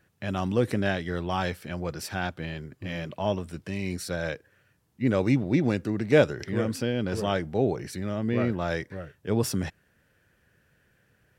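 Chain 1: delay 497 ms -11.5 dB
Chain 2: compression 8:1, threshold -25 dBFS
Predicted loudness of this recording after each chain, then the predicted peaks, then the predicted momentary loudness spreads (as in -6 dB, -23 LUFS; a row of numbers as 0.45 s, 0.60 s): -28.5 LUFS, -32.5 LUFS; -6.5 dBFS, -14.0 dBFS; 12 LU, 5 LU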